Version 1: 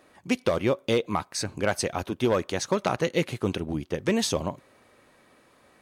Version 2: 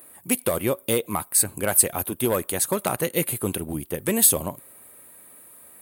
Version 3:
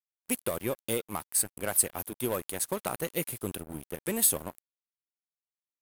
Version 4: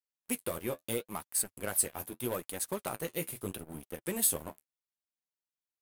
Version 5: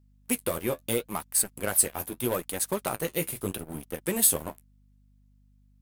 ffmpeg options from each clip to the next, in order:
ffmpeg -i in.wav -af "aexciter=amount=13.5:drive=9.3:freq=8800" out.wav
ffmpeg -i in.wav -af "aeval=exprs='sgn(val(0))*max(abs(val(0))-0.02,0)':channel_layout=same,volume=-6.5dB" out.wav
ffmpeg -i in.wav -af "flanger=delay=3.7:depth=9.8:regen=-40:speed=0.77:shape=sinusoidal" out.wav
ffmpeg -i in.wav -af "aeval=exprs='val(0)+0.000501*(sin(2*PI*50*n/s)+sin(2*PI*2*50*n/s)/2+sin(2*PI*3*50*n/s)/3+sin(2*PI*4*50*n/s)/4+sin(2*PI*5*50*n/s)/5)':channel_layout=same,volume=6.5dB" out.wav

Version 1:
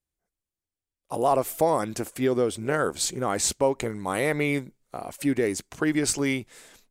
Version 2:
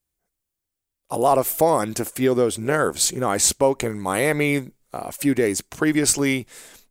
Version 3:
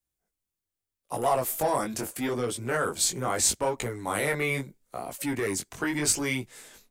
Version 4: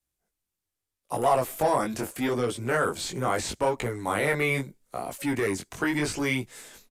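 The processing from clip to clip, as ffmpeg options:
ffmpeg -i in.wav -af "highshelf=frequency=10000:gain=8.5,volume=4.5dB" out.wav
ffmpeg -i in.wav -filter_complex "[0:a]flanger=delay=16:depth=6.8:speed=0.78,acrossover=split=160|680|3400[link_01][link_02][link_03][link_04];[link_02]asoftclip=type=tanh:threshold=-27.5dB[link_05];[link_01][link_05][link_03][link_04]amix=inputs=4:normalize=0,volume=-2dB" out.wav
ffmpeg -i in.wav -filter_complex "[0:a]aresample=32000,aresample=44100,acrossover=split=3600[link_01][link_02];[link_02]acompressor=threshold=-39dB:ratio=4:attack=1:release=60[link_03];[link_01][link_03]amix=inputs=2:normalize=0,volume=2.5dB" out.wav

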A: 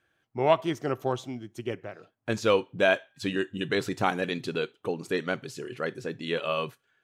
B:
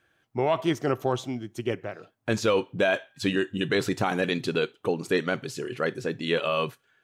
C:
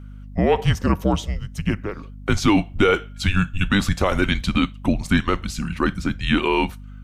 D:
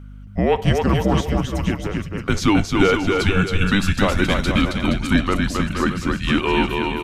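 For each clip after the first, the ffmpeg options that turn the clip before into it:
ffmpeg -i in.wav -af "alimiter=limit=-18dB:level=0:latency=1:release=18,volume=4.5dB" out.wav
ffmpeg -i in.wav -af "afreqshift=-200,aeval=exprs='val(0)+0.00708*(sin(2*PI*50*n/s)+sin(2*PI*2*50*n/s)/2+sin(2*PI*3*50*n/s)/3+sin(2*PI*4*50*n/s)/4+sin(2*PI*5*50*n/s)/5)':channel_layout=same,volume=6.5dB" out.wav
ffmpeg -i in.wav -af "aecho=1:1:270|472.5|624.4|738.3|823.7:0.631|0.398|0.251|0.158|0.1" out.wav

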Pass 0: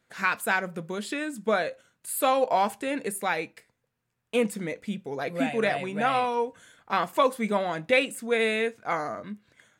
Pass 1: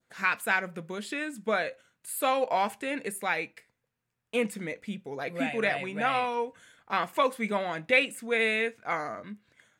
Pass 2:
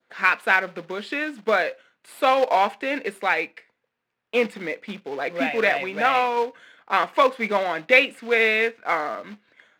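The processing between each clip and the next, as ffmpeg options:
ffmpeg -i in.wav -af "adynamicequalizer=threshold=0.0112:dfrequency=2200:dqfactor=1.2:tfrequency=2200:tqfactor=1.2:attack=5:release=100:ratio=0.375:range=3:mode=boostabove:tftype=bell,volume=-4dB" out.wav
ffmpeg -i in.wav -filter_complex "[0:a]acrusher=bits=3:mode=log:mix=0:aa=0.000001,acrossover=split=240 4500:gain=0.141 1 0.0891[link_01][link_02][link_03];[link_01][link_02][link_03]amix=inputs=3:normalize=0,volume=7.5dB" out.wav

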